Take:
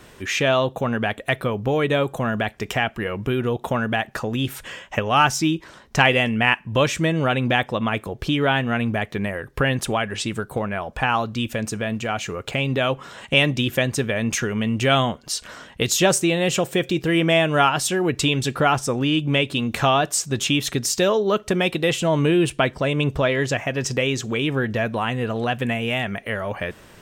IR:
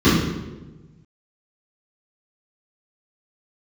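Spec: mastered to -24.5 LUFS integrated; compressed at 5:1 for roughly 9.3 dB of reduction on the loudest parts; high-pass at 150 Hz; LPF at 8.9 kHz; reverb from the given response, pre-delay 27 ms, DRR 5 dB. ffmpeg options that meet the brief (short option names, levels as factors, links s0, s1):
-filter_complex "[0:a]highpass=150,lowpass=8900,acompressor=threshold=0.0794:ratio=5,asplit=2[s0][s1];[1:a]atrim=start_sample=2205,adelay=27[s2];[s1][s2]afir=irnorm=-1:irlink=0,volume=0.0376[s3];[s0][s3]amix=inputs=2:normalize=0,volume=0.668"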